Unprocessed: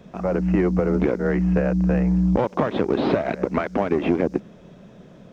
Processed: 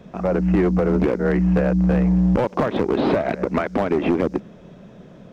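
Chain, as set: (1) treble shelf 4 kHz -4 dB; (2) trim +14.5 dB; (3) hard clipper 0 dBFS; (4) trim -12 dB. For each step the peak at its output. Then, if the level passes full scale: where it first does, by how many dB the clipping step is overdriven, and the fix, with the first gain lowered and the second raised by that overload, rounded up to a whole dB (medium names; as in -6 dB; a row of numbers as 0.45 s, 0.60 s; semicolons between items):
-6.0 dBFS, +8.5 dBFS, 0.0 dBFS, -12.0 dBFS; step 2, 8.5 dB; step 2 +5.5 dB, step 4 -3 dB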